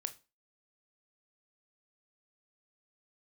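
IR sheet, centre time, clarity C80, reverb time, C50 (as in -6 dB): 5 ms, 24.0 dB, 0.30 s, 16.5 dB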